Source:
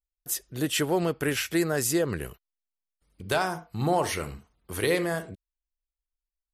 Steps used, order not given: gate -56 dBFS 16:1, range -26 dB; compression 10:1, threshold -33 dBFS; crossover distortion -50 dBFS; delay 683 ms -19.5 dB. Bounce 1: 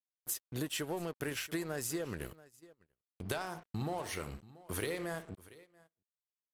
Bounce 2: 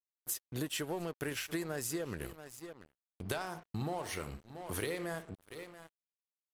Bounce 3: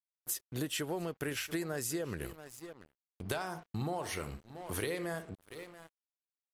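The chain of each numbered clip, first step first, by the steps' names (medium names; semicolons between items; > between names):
compression > crossover distortion > delay > gate; delay > compression > crossover distortion > gate; delay > crossover distortion > compression > gate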